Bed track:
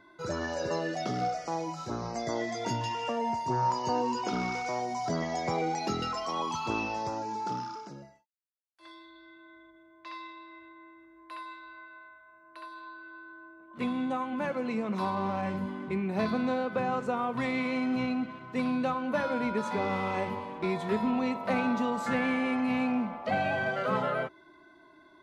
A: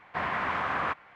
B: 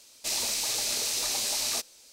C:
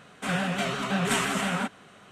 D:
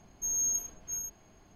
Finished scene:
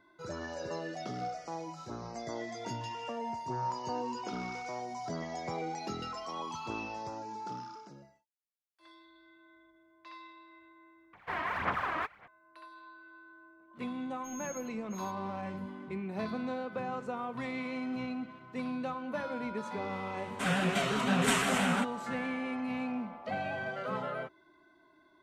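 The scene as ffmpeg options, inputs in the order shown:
-filter_complex "[0:a]volume=-7dB[a];[1:a]aphaser=in_gain=1:out_gain=1:delay=3.2:decay=0.62:speed=1.8:type=sinusoidal[b];[a]asplit=2[c][d];[c]atrim=end=11.134[e];[b]atrim=end=1.15,asetpts=PTS-STARTPTS,volume=-6dB[f];[d]atrim=start=12.276[g];[4:a]atrim=end=1.55,asetpts=PTS-STARTPTS,volume=-17dB,afade=t=in:d=0.004:c=hsin,afade=t=out:st=1.546:d=0.004:c=hsin,adelay=14020[h];[3:a]atrim=end=2.11,asetpts=PTS-STARTPTS,volume=-2.5dB,afade=t=in:d=0.004:c=hsin,afade=t=out:st=2.106:d=0.004:c=hsin,adelay=20170[i];[e][f]acrossfade=d=0.004:c1=hsin:c2=hsin[j];[j][g]acrossfade=d=0.004:c1=hsin:c2=hsin[k];[k][h][i]amix=inputs=3:normalize=0"

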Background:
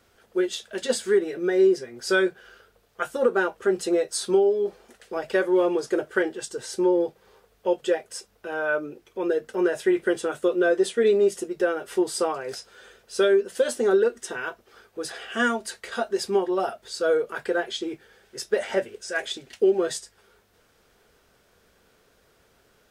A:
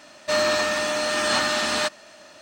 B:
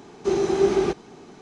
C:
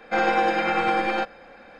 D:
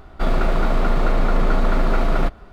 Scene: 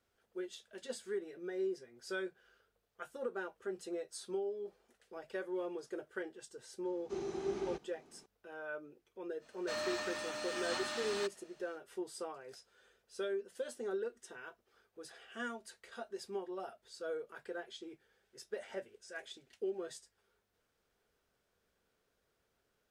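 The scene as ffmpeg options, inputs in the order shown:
-filter_complex "[0:a]volume=-18.5dB[a];[2:a]atrim=end=1.41,asetpts=PTS-STARTPTS,volume=-18dB,afade=t=in:d=0.004:c=hsin,afade=t=out:st=1.406:d=0.004:c=hsin,adelay=6850[b];[1:a]atrim=end=2.41,asetpts=PTS-STARTPTS,volume=-17.5dB,afade=t=in:d=0.05,afade=t=out:st=2.36:d=0.05,adelay=9390[c];[a][b][c]amix=inputs=3:normalize=0"

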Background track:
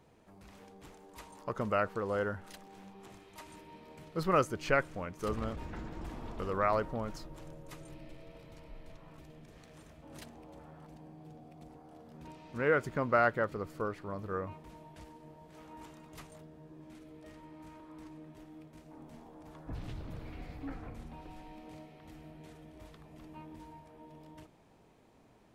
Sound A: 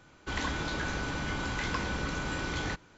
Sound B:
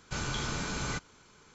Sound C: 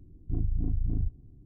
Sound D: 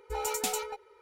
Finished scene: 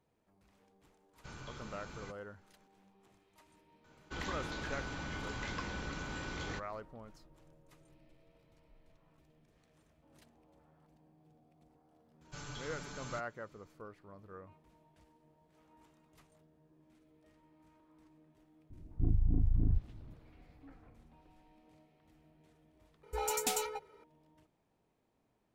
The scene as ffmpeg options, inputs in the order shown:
-filter_complex "[2:a]asplit=2[a][b];[0:a]volume=-14.5dB[c];[a]highshelf=f=4.8k:g=-9.5[d];[b]aecho=1:1:6.9:0.9[e];[d]atrim=end=1.54,asetpts=PTS-STARTPTS,volume=-14dB,afade=t=in:d=0.004:c=hsin,afade=t=out:st=1.536:d=0.004:c=hsin,adelay=1130[f];[1:a]atrim=end=2.97,asetpts=PTS-STARTPTS,volume=-8dB,afade=t=in:d=0.004:c=hsin,afade=t=out:st=2.966:d=0.004:c=hsin,adelay=3840[g];[e]atrim=end=1.54,asetpts=PTS-STARTPTS,volume=-15dB,afade=t=in:d=0.004:c=hsin,afade=t=out:st=1.536:d=0.004:c=hsin,adelay=12210[h];[3:a]atrim=end=1.45,asetpts=PTS-STARTPTS,volume=-1dB,afade=t=in:d=0.004:c=hsin,afade=t=out:st=1.446:d=0.004:c=hsin,adelay=18700[i];[4:a]atrim=end=1.01,asetpts=PTS-STARTPTS,volume=-2.5dB,afade=t=in:d=0.004:c=hsin,afade=t=out:st=1.006:d=0.004:c=hsin,adelay=23030[j];[c][f][g][h][i][j]amix=inputs=6:normalize=0"

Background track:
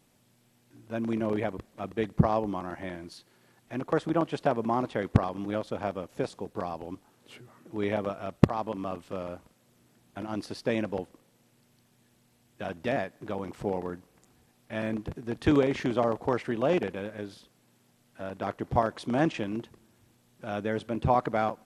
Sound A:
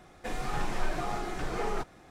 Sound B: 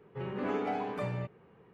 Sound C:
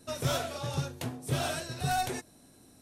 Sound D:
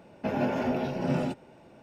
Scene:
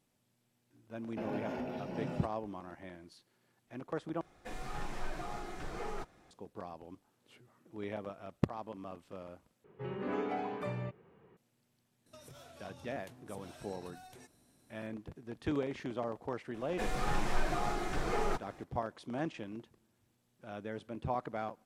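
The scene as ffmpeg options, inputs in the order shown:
-filter_complex "[1:a]asplit=2[a][b];[0:a]volume=-11.5dB[c];[4:a]alimiter=limit=-20.5dB:level=0:latency=1:release=161[d];[2:a]equalizer=f=360:t=o:w=0.27:g=3[e];[3:a]acompressor=threshold=-42dB:ratio=10:attack=14:release=81:knee=1:detection=rms[f];[c]asplit=3[g][h][i];[g]atrim=end=4.214[j];[a]atrim=end=2.1,asetpts=PTS-STARTPTS,volume=-8.5dB[k];[h]atrim=start=6.306:end=9.644[l];[e]atrim=end=1.73,asetpts=PTS-STARTPTS,volume=-3.5dB[m];[i]atrim=start=11.366[n];[d]atrim=end=1.82,asetpts=PTS-STARTPTS,volume=-9.5dB,afade=t=in:d=0.004:c=hsin,afade=t=out:st=1.816:d=0.004:c=hsin,adelay=930[o];[f]atrim=end=2.81,asetpts=PTS-STARTPTS,volume=-10.5dB,afade=t=in:d=0.004:c=hsin,afade=t=out:st=2.806:d=0.004:c=hsin,adelay=12060[p];[b]atrim=end=2.1,asetpts=PTS-STARTPTS,volume=-1dB,afade=t=in:d=0.004:c=hsin,afade=t=out:st=2.096:d=0.004:c=hsin,adelay=16540[q];[j][k]acrossfade=d=0.004:c1=hsin:c2=hsin[r];[r][l]acrossfade=d=0.004:c1=hsin:c2=hsin[s];[s][m]acrossfade=d=0.004:c1=hsin:c2=hsin[t];[t][n]acrossfade=d=0.004:c1=hsin:c2=hsin[u];[u][o][p][q]amix=inputs=4:normalize=0"

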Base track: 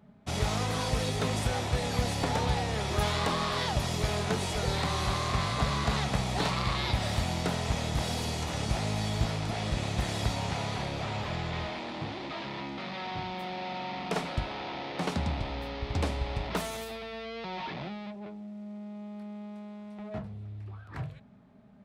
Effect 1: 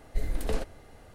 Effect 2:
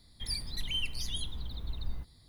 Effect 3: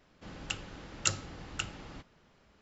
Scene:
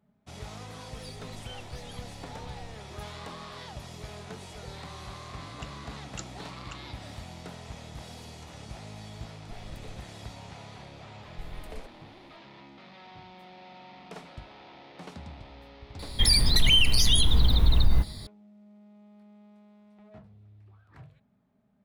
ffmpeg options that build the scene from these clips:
-filter_complex "[2:a]asplit=2[a][b];[1:a]asplit=2[c][d];[0:a]volume=-12.5dB[e];[3:a]highpass=f=280:t=q:w=4.9[f];[b]alimiter=level_in=29dB:limit=-1dB:release=50:level=0:latency=1[g];[a]atrim=end=2.28,asetpts=PTS-STARTPTS,volume=-14dB,afade=t=in:d=0.004:c=hsin,afade=t=out:st=2.276:d=0.004:c=hsin,adelay=750[h];[f]atrim=end=2.61,asetpts=PTS-STARTPTS,volume=-12.5dB,afade=t=in:d=0.004:c=hsin,afade=t=out:st=2.606:d=0.004:c=hsin,adelay=5120[i];[c]atrim=end=1.14,asetpts=PTS-STARTPTS,volume=-17dB,afade=t=in:d=0.004:c=hsin,afade=t=out:st=1.136:d=0.004:c=hsin,adelay=9350[j];[d]atrim=end=1.14,asetpts=PTS-STARTPTS,volume=-12.5dB,afade=t=in:d=0.004:c=hsin,afade=t=out:st=1.136:d=0.004:c=hsin,adelay=11230[k];[g]atrim=end=2.28,asetpts=PTS-STARTPTS,volume=-10dB,afade=t=in:d=0.004:c=hsin,afade=t=out:st=2.276:d=0.004:c=hsin,adelay=15990[l];[e][h][i][j][k][l]amix=inputs=6:normalize=0"

